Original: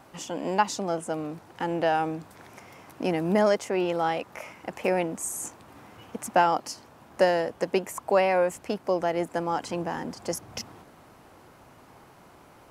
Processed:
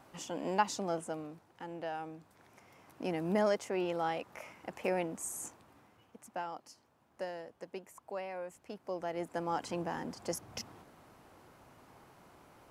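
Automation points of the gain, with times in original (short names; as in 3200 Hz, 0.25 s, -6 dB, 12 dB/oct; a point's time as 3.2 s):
0.98 s -6.5 dB
1.5 s -15.5 dB
2.2 s -15.5 dB
3.28 s -8 dB
5.45 s -8 dB
6.12 s -19 dB
8.42 s -19 dB
9.54 s -6.5 dB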